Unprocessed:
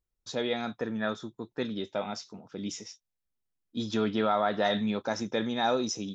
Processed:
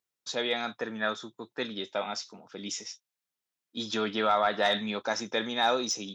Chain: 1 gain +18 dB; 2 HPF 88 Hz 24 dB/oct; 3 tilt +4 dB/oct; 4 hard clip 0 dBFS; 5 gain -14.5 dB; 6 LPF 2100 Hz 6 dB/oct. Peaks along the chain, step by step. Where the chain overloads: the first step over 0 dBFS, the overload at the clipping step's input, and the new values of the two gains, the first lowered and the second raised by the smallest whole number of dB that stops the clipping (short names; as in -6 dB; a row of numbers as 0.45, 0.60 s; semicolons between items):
+3.0, +3.5, +7.0, 0.0, -14.5, -14.5 dBFS; step 1, 7.0 dB; step 1 +11 dB, step 5 -7.5 dB